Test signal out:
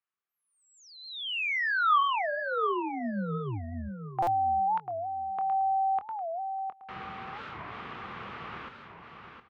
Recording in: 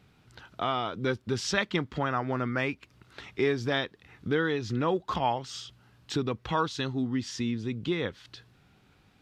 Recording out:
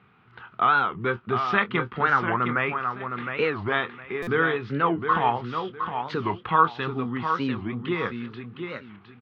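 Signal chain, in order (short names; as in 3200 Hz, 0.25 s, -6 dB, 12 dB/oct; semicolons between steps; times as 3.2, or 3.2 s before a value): speaker cabinet 140–2800 Hz, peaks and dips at 150 Hz -3 dB, 290 Hz -9 dB, 590 Hz -9 dB, 1200 Hz +9 dB; doubler 25 ms -11.5 dB; feedback echo 0.712 s, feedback 25%, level -7 dB; stuck buffer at 4.22, samples 256, times 8; record warp 45 rpm, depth 250 cents; gain +5 dB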